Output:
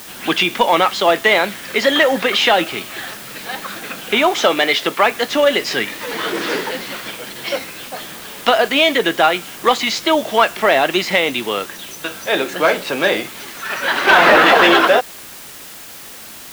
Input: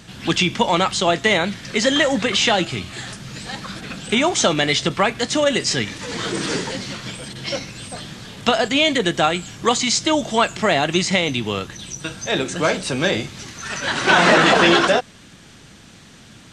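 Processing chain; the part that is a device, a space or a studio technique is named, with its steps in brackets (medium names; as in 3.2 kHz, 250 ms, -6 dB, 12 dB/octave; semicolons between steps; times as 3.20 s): tape answering machine (band-pass 370–3200 Hz; saturation -7 dBFS, distortion -21 dB; wow and flutter; white noise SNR 19 dB); 4.40–5.06 s: Bessel high-pass 190 Hz; trim +6 dB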